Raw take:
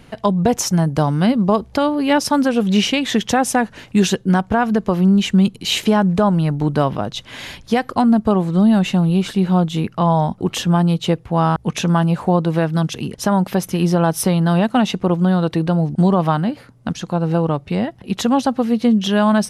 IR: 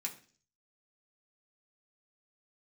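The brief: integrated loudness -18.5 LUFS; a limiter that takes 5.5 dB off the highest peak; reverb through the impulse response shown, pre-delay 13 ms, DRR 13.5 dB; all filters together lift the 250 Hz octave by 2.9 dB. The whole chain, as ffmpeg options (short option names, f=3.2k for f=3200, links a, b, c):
-filter_complex "[0:a]equalizer=f=250:t=o:g=4,alimiter=limit=-7.5dB:level=0:latency=1,asplit=2[a][b];[1:a]atrim=start_sample=2205,adelay=13[c];[b][c]afir=irnorm=-1:irlink=0,volume=-13dB[d];[a][d]amix=inputs=2:normalize=0,volume=-1.5dB"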